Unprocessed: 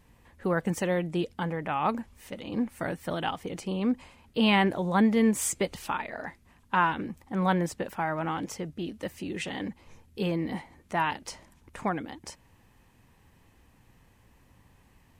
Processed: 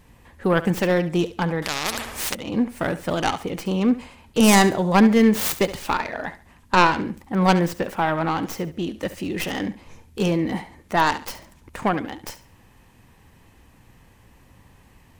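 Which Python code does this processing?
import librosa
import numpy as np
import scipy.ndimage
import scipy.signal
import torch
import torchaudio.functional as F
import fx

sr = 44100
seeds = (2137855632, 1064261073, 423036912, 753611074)

y = fx.tracing_dist(x, sr, depth_ms=0.47)
y = fx.echo_thinned(y, sr, ms=70, feedback_pct=28, hz=210.0, wet_db=-14)
y = fx.spectral_comp(y, sr, ratio=4.0, at=(1.62, 2.35))
y = y * 10.0 ** (7.5 / 20.0)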